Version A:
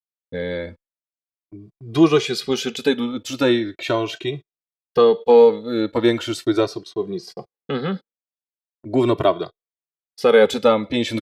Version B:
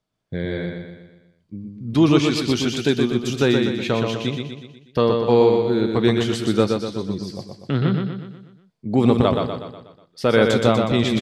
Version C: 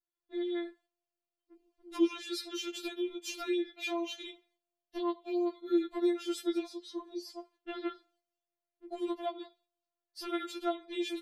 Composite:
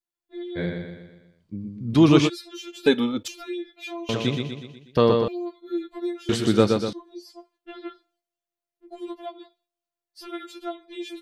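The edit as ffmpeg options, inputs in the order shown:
-filter_complex "[1:a]asplit=3[a][b][c];[2:a]asplit=5[d][e][f][g][h];[d]atrim=end=0.59[i];[a]atrim=start=0.55:end=2.3[j];[e]atrim=start=2.26:end=2.862[k];[0:a]atrim=start=2.858:end=3.282[l];[f]atrim=start=3.278:end=4.092[m];[b]atrim=start=4.088:end=5.282[n];[g]atrim=start=5.278:end=6.292[o];[c]atrim=start=6.288:end=6.932[p];[h]atrim=start=6.928[q];[i][j]acrossfade=d=0.04:c1=tri:c2=tri[r];[r][k]acrossfade=d=0.04:c1=tri:c2=tri[s];[s][l]acrossfade=d=0.004:c1=hsin:c2=hsin[t];[t][m]acrossfade=d=0.004:c1=hsin:c2=hsin[u];[u][n]acrossfade=d=0.004:c1=hsin:c2=hsin[v];[v][o]acrossfade=d=0.004:c1=hsin:c2=hsin[w];[w][p]acrossfade=d=0.004:c1=hsin:c2=hsin[x];[x][q]acrossfade=d=0.004:c1=hsin:c2=hsin"

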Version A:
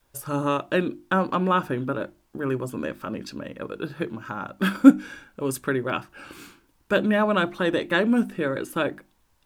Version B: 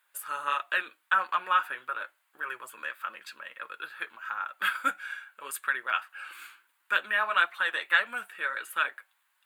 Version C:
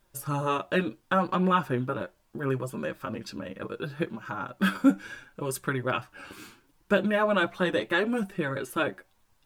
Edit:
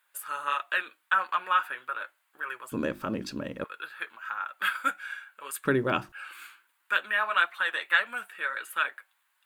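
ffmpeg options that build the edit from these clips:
-filter_complex "[0:a]asplit=2[a][b];[1:a]asplit=3[c][d][e];[c]atrim=end=2.722[f];[a]atrim=start=2.718:end=3.642[g];[d]atrim=start=3.638:end=5.652[h];[b]atrim=start=5.648:end=6.122[i];[e]atrim=start=6.118[j];[f][g]acrossfade=d=0.004:c1=hsin:c2=hsin[k];[k][h]acrossfade=d=0.004:c1=hsin:c2=hsin[l];[l][i]acrossfade=d=0.004:c1=hsin:c2=hsin[m];[m][j]acrossfade=d=0.004:c1=hsin:c2=hsin"

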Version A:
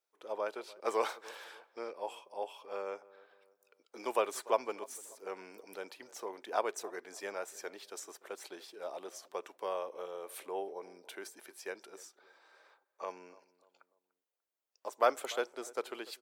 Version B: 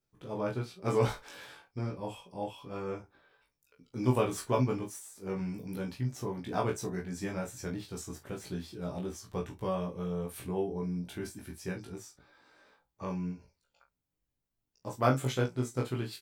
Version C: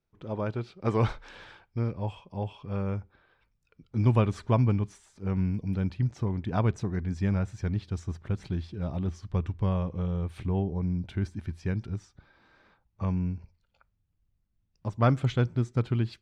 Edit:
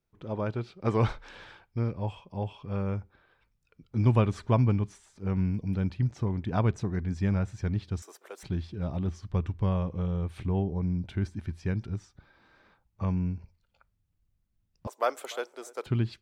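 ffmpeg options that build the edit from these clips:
-filter_complex "[0:a]asplit=2[a][b];[2:a]asplit=3[c][d][e];[c]atrim=end=8.022[f];[a]atrim=start=8.018:end=8.432[g];[d]atrim=start=8.428:end=14.872[h];[b]atrim=start=14.868:end=15.862[i];[e]atrim=start=15.858[j];[f][g]acrossfade=d=0.004:c1=hsin:c2=hsin[k];[k][h]acrossfade=d=0.004:c1=hsin:c2=hsin[l];[l][i]acrossfade=d=0.004:c1=hsin:c2=hsin[m];[m][j]acrossfade=d=0.004:c1=hsin:c2=hsin"

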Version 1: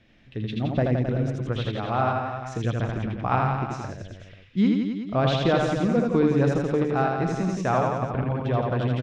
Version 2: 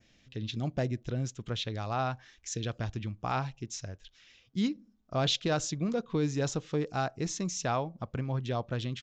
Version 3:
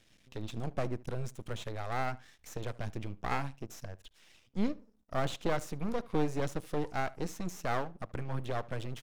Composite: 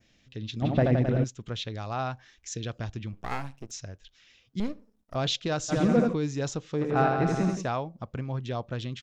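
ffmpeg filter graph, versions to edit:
-filter_complex "[0:a]asplit=3[a][b][c];[2:a]asplit=2[d][e];[1:a]asplit=6[f][g][h][i][j][k];[f]atrim=end=0.622[l];[a]atrim=start=0.618:end=1.242[m];[g]atrim=start=1.238:end=3.132[n];[d]atrim=start=3.128:end=3.712[o];[h]atrim=start=3.708:end=4.602[p];[e]atrim=start=4.598:end=5.152[q];[i]atrim=start=5.148:end=5.74[r];[b]atrim=start=5.68:end=6.15[s];[j]atrim=start=6.09:end=6.98[t];[c]atrim=start=6.74:end=7.71[u];[k]atrim=start=7.47[v];[l][m]acrossfade=d=0.004:c1=hsin:c2=hsin[w];[w][n]acrossfade=d=0.004:c1=hsin:c2=hsin[x];[x][o]acrossfade=d=0.004:c1=hsin:c2=hsin[y];[y][p]acrossfade=d=0.004:c1=hsin:c2=hsin[z];[z][q]acrossfade=d=0.004:c1=hsin:c2=hsin[aa];[aa][r]acrossfade=d=0.004:c1=hsin:c2=hsin[ab];[ab][s]acrossfade=d=0.06:c1=tri:c2=tri[ac];[ac][t]acrossfade=d=0.06:c1=tri:c2=tri[ad];[ad][u]acrossfade=d=0.24:c1=tri:c2=tri[ae];[ae][v]acrossfade=d=0.24:c1=tri:c2=tri"

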